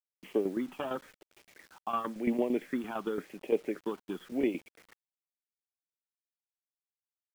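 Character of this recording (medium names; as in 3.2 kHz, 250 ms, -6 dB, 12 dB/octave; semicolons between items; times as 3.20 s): phasing stages 6, 0.93 Hz, lowest notch 510–1400 Hz; tremolo saw down 8.8 Hz, depth 70%; a quantiser's noise floor 10-bit, dither none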